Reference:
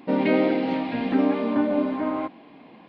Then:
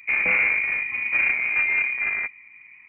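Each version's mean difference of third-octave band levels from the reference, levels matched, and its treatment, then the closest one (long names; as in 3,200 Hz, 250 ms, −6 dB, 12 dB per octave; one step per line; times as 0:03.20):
11.5 dB: adaptive Wiener filter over 41 samples
high-pass filter 370 Hz 12 dB per octave
soft clipping −23 dBFS, distortion −12 dB
voice inversion scrambler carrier 2,700 Hz
level +8 dB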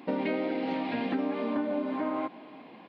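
2.5 dB: high-pass filter 200 Hz 6 dB per octave
downward compressor, threshold −27 dBFS, peak gain reduction 10 dB
single-tap delay 346 ms −21.5 dB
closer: second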